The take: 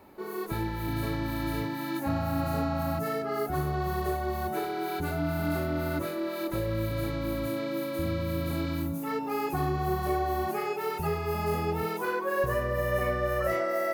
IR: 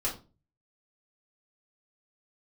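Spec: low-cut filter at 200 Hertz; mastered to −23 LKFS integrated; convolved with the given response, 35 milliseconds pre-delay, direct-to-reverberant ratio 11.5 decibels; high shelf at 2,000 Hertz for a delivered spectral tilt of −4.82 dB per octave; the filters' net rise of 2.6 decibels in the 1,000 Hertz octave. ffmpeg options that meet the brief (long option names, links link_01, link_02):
-filter_complex "[0:a]highpass=200,equalizer=frequency=1000:width_type=o:gain=4.5,highshelf=frequency=2000:gain=-3.5,asplit=2[link_01][link_02];[1:a]atrim=start_sample=2205,adelay=35[link_03];[link_02][link_03]afir=irnorm=-1:irlink=0,volume=-17dB[link_04];[link_01][link_04]amix=inputs=2:normalize=0,volume=7.5dB"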